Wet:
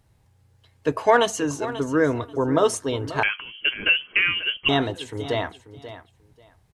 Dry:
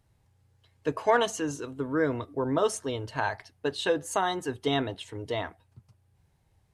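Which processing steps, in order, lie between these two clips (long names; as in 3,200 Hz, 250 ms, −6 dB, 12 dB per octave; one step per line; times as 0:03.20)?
on a send: repeating echo 537 ms, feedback 18%, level −14 dB
0:03.23–0:04.69: on the sum: voice inversion scrambler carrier 3,200 Hz
level +6 dB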